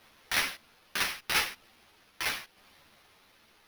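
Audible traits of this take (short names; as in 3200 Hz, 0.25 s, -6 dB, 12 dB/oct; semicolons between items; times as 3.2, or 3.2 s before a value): a quantiser's noise floor 10-bit, dither triangular; tremolo saw down 0.78 Hz, depth 40%; aliases and images of a low sample rate 7700 Hz, jitter 0%; a shimmering, thickened sound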